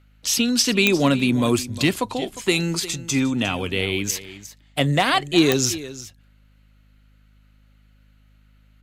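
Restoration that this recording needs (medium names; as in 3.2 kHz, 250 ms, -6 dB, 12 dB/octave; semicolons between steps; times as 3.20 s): clip repair -6 dBFS; de-click; de-hum 51.7 Hz, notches 5; inverse comb 355 ms -15.5 dB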